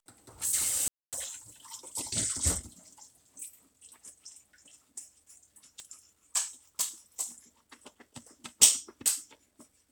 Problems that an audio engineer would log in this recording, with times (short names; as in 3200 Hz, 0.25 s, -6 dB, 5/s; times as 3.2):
0.88–1.13 gap 0.247 s
5.8 pop -29 dBFS